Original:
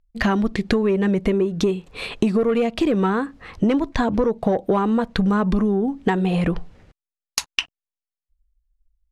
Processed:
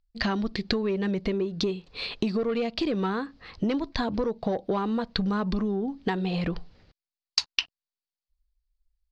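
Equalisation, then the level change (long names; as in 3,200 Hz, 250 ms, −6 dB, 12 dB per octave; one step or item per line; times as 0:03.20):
low-pass with resonance 4,600 Hz, resonance Q 4.4
−8.0 dB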